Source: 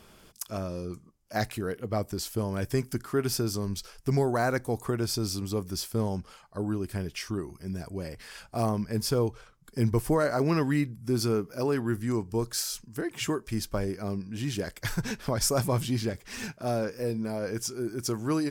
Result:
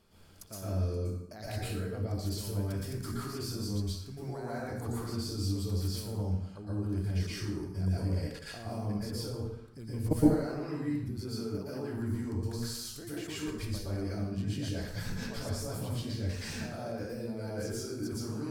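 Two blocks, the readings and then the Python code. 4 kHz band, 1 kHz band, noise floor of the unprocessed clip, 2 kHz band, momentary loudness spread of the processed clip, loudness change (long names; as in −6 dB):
−6.0 dB, −10.5 dB, −56 dBFS, −8.5 dB, 6 LU, −5.0 dB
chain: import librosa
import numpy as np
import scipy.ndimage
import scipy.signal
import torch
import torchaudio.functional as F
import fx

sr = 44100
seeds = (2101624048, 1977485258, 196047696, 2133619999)

y = fx.peak_eq(x, sr, hz=4300.0, db=7.5, octaves=0.24)
y = fx.hum_notches(y, sr, base_hz=60, count=4)
y = fx.level_steps(y, sr, step_db=22)
y = fx.low_shelf(y, sr, hz=390.0, db=6.0)
y = fx.rev_plate(y, sr, seeds[0], rt60_s=0.8, hf_ratio=0.75, predelay_ms=105, drr_db=-8.0)
y = y * 10.0 ** (-4.5 / 20.0)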